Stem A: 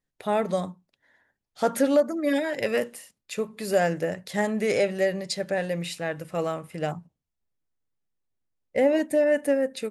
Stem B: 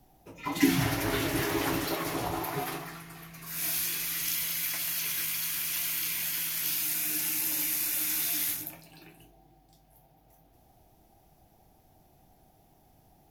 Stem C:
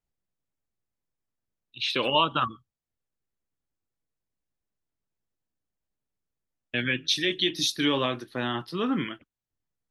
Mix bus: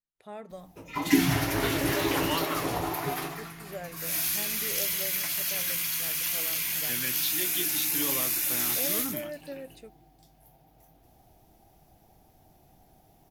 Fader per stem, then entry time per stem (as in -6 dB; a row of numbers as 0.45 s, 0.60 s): -17.5 dB, +2.0 dB, -10.0 dB; 0.00 s, 0.50 s, 0.15 s